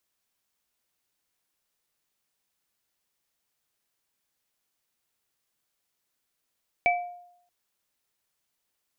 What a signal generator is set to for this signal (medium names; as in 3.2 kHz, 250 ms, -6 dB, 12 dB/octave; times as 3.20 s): sine partials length 0.63 s, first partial 708 Hz, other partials 2.31 kHz, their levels 0.5 dB, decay 0.74 s, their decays 0.31 s, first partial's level -19 dB